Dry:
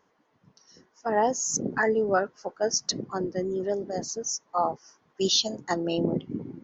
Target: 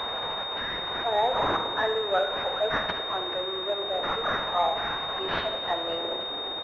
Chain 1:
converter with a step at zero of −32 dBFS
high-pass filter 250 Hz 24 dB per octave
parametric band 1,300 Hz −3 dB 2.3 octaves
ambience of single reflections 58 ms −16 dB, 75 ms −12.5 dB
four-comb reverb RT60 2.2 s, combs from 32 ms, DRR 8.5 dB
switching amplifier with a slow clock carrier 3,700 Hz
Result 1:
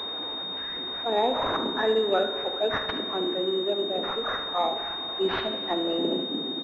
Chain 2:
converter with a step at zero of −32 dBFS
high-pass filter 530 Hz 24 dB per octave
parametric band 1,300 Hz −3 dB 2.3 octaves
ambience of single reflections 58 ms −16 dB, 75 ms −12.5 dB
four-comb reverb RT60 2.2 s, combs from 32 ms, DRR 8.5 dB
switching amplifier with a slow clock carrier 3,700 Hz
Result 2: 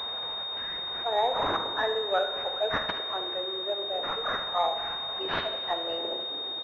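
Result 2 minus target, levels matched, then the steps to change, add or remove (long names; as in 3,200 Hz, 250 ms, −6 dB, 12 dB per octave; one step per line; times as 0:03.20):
converter with a step at zero: distortion −6 dB
change: converter with a step at zero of −23.5 dBFS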